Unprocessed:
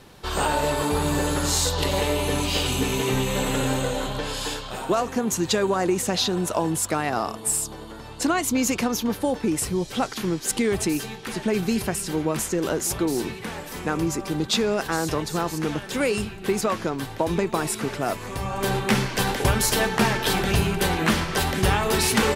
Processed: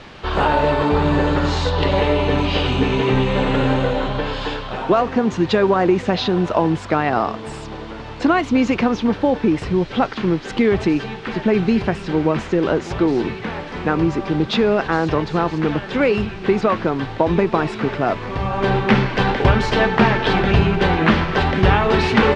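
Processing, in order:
background noise white −41 dBFS
Bessel low-pass filter 2,600 Hz, order 4
level +7 dB

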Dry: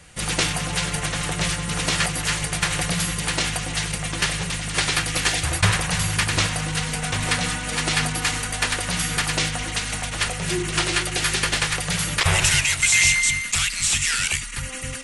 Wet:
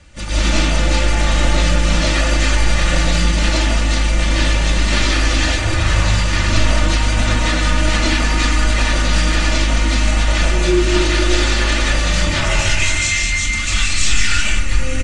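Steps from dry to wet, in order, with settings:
low-pass filter 7,400 Hz 24 dB per octave
low-shelf EQ 280 Hz +9 dB
comb filter 3.4 ms, depth 65%
brickwall limiter −13 dBFS, peak gain reduction 11.5 dB
comb and all-pass reverb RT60 1 s, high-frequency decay 0.35×, pre-delay 110 ms, DRR −9.5 dB
level −3 dB

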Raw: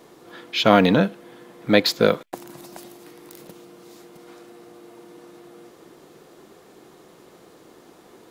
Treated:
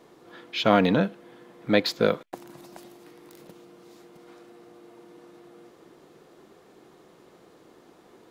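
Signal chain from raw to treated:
high-shelf EQ 6,100 Hz −7 dB
level −4.5 dB

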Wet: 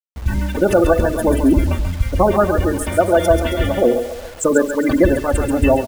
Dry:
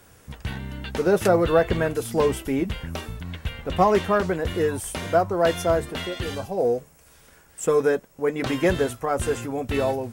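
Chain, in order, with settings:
adaptive Wiener filter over 9 samples
high-shelf EQ 3,600 Hz +6.5 dB
comb filter 3.4 ms, depth 59%
gate on every frequency bin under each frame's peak −20 dB strong
echo with a time of its own for lows and highs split 540 Hz, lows 96 ms, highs 234 ms, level −7 dB
automatic gain control gain up to 16 dB
phase-vocoder stretch with locked phases 0.58×
low-shelf EQ 99 Hz +10.5 dB
bit-depth reduction 6 bits, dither none
level −1 dB

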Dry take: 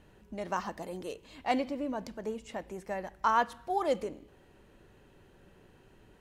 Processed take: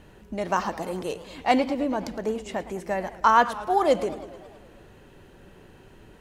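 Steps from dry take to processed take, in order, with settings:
feedback echo with a swinging delay time 107 ms, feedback 66%, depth 215 cents, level −16 dB
level +8.5 dB

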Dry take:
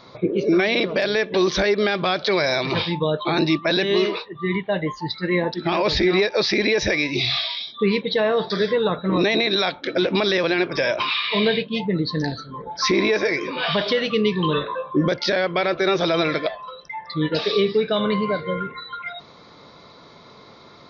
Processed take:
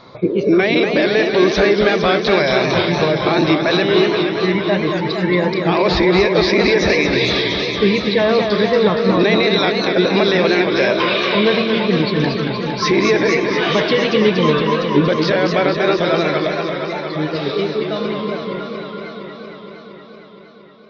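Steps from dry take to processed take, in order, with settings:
fade-out on the ending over 6.28 s
high-shelf EQ 4,900 Hz −9 dB
feedback echo with a swinging delay time 232 ms, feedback 79%, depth 145 cents, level −6 dB
level +4.5 dB

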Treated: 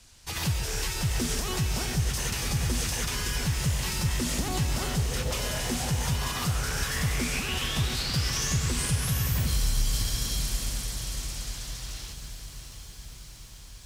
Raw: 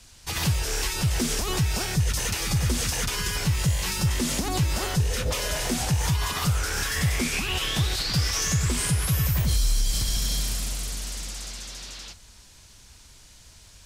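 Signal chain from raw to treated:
feedback delay with all-pass diffusion 716 ms, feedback 67%, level −11.5 dB
feedback echo at a low word length 136 ms, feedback 80%, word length 8 bits, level −12 dB
level −4 dB

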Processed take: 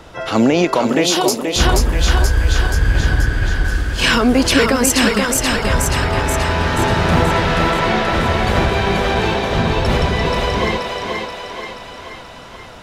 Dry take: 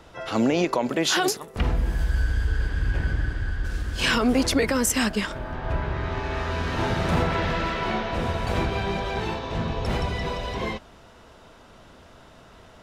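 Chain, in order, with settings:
feedback echo with a high-pass in the loop 480 ms, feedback 58%, high-pass 310 Hz, level −3 dB
in parallel at −2 dB: speech leveller within 3 dB 0.5 s
0:01.05–0:01.64: on the sum: parametric band 1,600 Hz −14.5 dB → −4 dB 0.91 octaves
level +3.5 dB

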